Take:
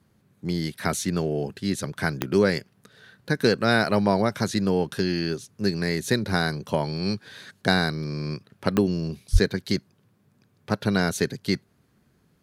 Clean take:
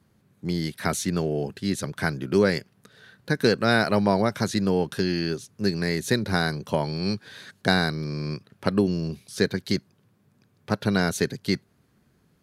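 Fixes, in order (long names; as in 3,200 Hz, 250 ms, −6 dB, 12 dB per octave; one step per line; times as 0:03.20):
click removal
high-pass at the plosives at 0:09.32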